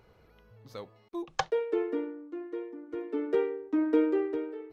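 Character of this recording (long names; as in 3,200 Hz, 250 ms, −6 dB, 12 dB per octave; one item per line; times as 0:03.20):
background noise floor −62 dBFS
spectral slope −2.0 dB per octave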